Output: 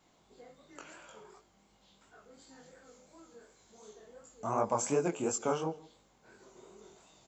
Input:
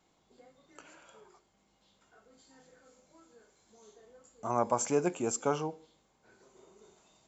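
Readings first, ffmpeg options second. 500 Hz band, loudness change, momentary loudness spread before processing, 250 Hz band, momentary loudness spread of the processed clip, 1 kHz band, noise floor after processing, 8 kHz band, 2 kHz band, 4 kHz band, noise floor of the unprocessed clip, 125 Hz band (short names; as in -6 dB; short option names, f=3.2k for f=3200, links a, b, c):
-1.0 dB, -1.0 dB, 9 LU, -1.0 dB, 21 LU, -1.5 dB, -68 dBFS, n/a, -0.5 dB, 0.0 dB, -72 dBFS, -0.5 dB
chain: -filter_complex "[0:a]asplit=2[a][b];[b]acompressor=threshold=-41dB:ratio=6,volume=1.5dB[c];[a][c]amix=inputs=2:normalize=0,flanger=delay=18.5:depth=7.1:speed=2.8,aecho=1:1:162:0.0708"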